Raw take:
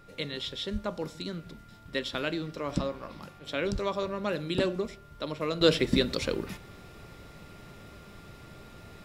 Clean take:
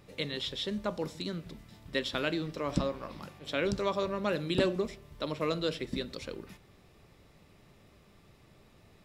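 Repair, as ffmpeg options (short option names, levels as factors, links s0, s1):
-filter_complex "[0:a]bandreject=f=1400:w=30,asplit=3[s0][s1][s2];[s0]afade=t=out:st=0.72:d=0.02[s3];[s1]highpass=f=140:w=0.5412,highpass=f=140:w=1.3066,afade=t=in:st=0.72:d=0.02,afade=t=out:st=0.84:d=0.02[s4];[s2]afade=t=in:st=0.84:d=0.02[s5];[s3][s4][s5]amix=inputs=3:normalize=0,asplit=3[s6][s7][s8];[s6]afade=t=out:st=3.72:d=0.02[s9];[s7]highpass=f=140:w=0.5412,highpass=f=140:w=1.3066,afade=t=in:st=3.72:d=0.02,afade=t=out:st=3.84:d=0.02[s10];[s8]afade=t=in:st=3.84:d=0.02[s11];[s9][s10][s11]amix=inputs=3:normalize=0,agate=range=0.0891:threshold=0.00794,asetnsamples=n=441:p=0,asendcmd='5.61 volume volume -10.5dB',volume=1"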